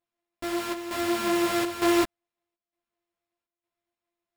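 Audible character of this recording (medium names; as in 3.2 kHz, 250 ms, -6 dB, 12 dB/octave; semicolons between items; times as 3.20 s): a buzz of ramps at a fixed pitch in blocks of 128 samples; chopped level 1.1 Hz, depth 65%, duty 80%; aliases and images of a low sample rate 6.1 kHz, jitter 0%; a shimmering, thickened sound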